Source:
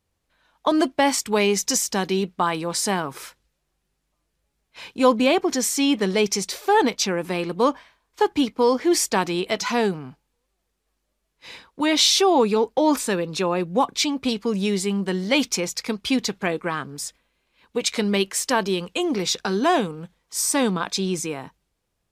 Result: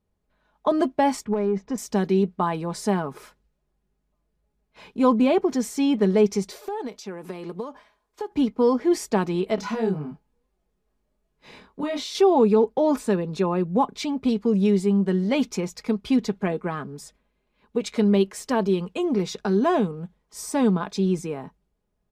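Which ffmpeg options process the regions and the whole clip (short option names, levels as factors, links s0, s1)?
-filter_complex "[0:a]asettb=1/sr,asplit=3[s0][s1][s2];[s0]atrim=end=1.254[s3];[s1]atrim=start=1.25:end=1.78,asetpts=PTS-STARTPTS,afade=t=in:d=0.004:c=qsin,afade=t=out:st=0.526:d=0.004:c=qsin,lowpass=1700,acompressor=threshold=0.0891:ratio=6:attack=3.2:release=140:knee=1:detection=peak,asoftclip=type=hard:threshold=0.106[s4];[s2]atrim=start=1.776[s5];[s3][s4]acrossfade=d=0.004:c1=hsin:c2=qsin[s6];[s6][s5]acrossfade=d=0.004:c1=qsin:c2=hsin,asettb=1/sr,asplit=3[s7][s8][s9];[s7]atrim=end=6.524[s10];[s8]atrim=start=6.52:end=8.35,asetpts=PTS-STARTPTS,afade=t=in:d=0.004:c=qsin,afade=t=out:st=1.826:d=0.004:c=qsin,bass=f=250:g=-8,treble=f=4000:g=5,acompressor=threshold=0.0398:ratio=6:attack=3.2:release=140:knee=1:detection=peak[s11];[s9]atrim=start=8.346[s12];[s10][s11]acrossfade=d=0.004:c1=hsin:c2=qsin[s13];[s13][s12]acrossfade=d=0.004:c1=qsin:c2=hsin,asettb=1/sr,asplit=3[s14][s15][s16];[s14]atrim=end=9.554[s17];[s15]atrim=start=9.55:end=12.15,asetpts=PTS-STARTPTS,afade=t=in:d=0.004:c=qsin,afade=t=out:st=2.596:d=0.004:c=qsin,acompressor=threshold=0.0562:ratio=2.5:attack=3.2:release=140:knee=1:detection=peak,asplit=2[s18][s19];[s19]adelay=27,volume=0.794[s20];[s18][s20]amix=inputs=2:normalize=0,atrim=end_sample=114660[s21];[s16]atrim=start=12.146[s22];[s17][s21]acrossfade=d=0.004:c1=hsin:c2=qsin[s23];[s23][s22]acrossfade=d=0.004:c1=qsin:c2=hsin,tiltshelf=f=1300:g=7.5,aecho=1:1:4.8:0.42,volume=0.501"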